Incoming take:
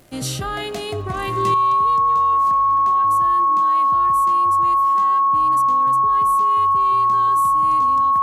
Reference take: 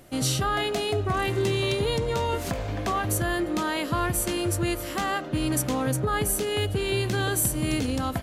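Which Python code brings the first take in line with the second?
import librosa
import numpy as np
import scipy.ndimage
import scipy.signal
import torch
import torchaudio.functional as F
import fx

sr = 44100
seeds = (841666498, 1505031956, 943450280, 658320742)

y = fx.fix_declick_ar(x, sr, threshold=6.5)
y = fx.notch(y, sr, hz=1100.0, q=30.0)
y = fx.gain(y, sr, db=fx.steps((0.0, 0.0), (1.54, 11.5)))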